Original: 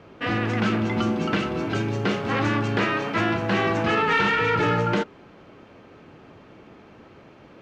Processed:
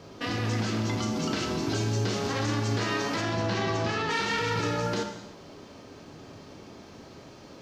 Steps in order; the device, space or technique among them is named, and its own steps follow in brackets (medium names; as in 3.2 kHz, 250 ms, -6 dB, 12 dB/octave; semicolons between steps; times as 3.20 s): 3.21–4.10 s: low-pass 5.9 kHz 12 dB/octave; peaking EQ 1.4 kHz -3 dB 0.24 oct; over-bright horn tweeter (resonant high shelf 3.6 kHz +11 dB, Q 1.5; peak limiter -22 dBFS, peak gain reduction 11 dB); gated-style reverb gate 350 ms falling, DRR 4 dB